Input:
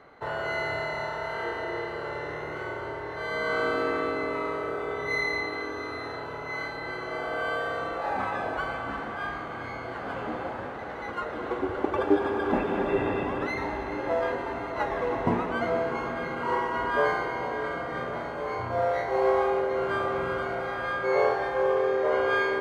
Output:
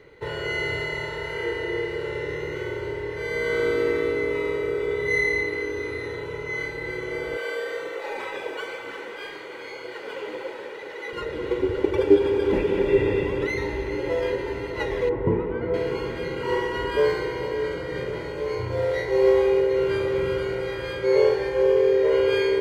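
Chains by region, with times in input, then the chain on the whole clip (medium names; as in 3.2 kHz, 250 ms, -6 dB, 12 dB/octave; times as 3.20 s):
7.36–11.13 s: high-pass 440 Hz + phaser 2 Hz, delay 4.8 ms, feedback 29%
15.09–15.74 s: low-pass 1.3 kHz + peaking EQ 640 Hz -3 dB 0.35 oct
whole clip: high-order bell 970 Hz -12.5 dB; comb 2.1 ms, depth 63%; trim +5.5 dB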